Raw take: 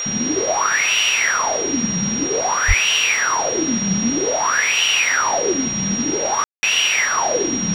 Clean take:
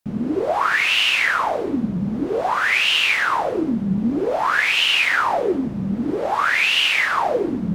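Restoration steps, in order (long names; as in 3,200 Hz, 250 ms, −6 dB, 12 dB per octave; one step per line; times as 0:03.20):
notch filter 5,700 Hz, Q 30
0:02.67–0:02.79: high-pass filter 140 Hz 24 dB per octave
ambience match 0:06.44–0:06.63
noise reduction from a noise print 6 dB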